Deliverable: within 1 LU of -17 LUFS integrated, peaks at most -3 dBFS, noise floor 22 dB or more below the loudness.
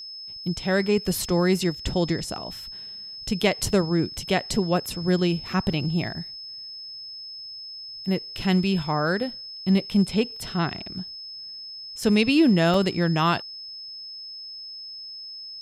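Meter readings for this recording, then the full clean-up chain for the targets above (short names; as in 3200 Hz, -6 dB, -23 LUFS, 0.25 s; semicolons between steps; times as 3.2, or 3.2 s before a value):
dropouts 2; longest dropout 3.2 ms; steady tone 5200 Hz; tone level -36 dBFS; loudness -24.5 LUFS; peak -6.5 dBFS; loudness target -17.0 LUFS
-> interpolate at 5.73/12.74, 3.2 ms; notch 5200 Hz, Q 30; gain +7.5 dB; limiter -3 dBFS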